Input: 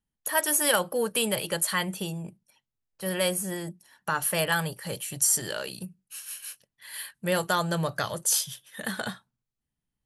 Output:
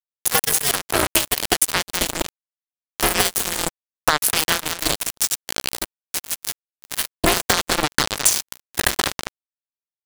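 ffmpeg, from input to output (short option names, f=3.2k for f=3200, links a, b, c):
-filter_complex "[0:a]acompressor=mode=upward:threshold=-44dB:ratio=2.5,aeval=exprs='sgn(val(0))*max(abs(val(0))-0.00398,0)':c=same,equalizer=f=5.7k:w=0.98:g=10,asplit=2[a][b];[b]adelay=196,lowpass=f=2.6k:p=1,volume=-9.5dB,asplit=2[c][d];[d]adelay=196,lowpass=f=2.6k:p=1,volume=0.25,asplit=2[e][f];[f]adelay=196,lowpass=f=2.6k:p=1,volume=0.25[g];[a][c][e][g]amix=inputs=4:normalize=0,acompressor=threshold=-34dB:ratio=16,asplit=3[h][i][j];[h]afade=t=out:st=4.96:d=0.02[k];[i]tremolo=f=12:d=0.54,afade=t=in:st=4.96:d=0.02,afade=t=out:st=6.99:d=0.02[l];[j]afade=t=in:st=6.99:d=0.02[m];[k][l][m]amix=inputs=3:normalize=0,acrusher=bits=4:mix=0:aa=0.5,alimiter=level_in=32.5dB:limit=-1dB:release=50:level=0:latency=1,aeval=exprs='val(0)*sgn(sin(2*PI*150*n/s))':c=same,volume=-2dB"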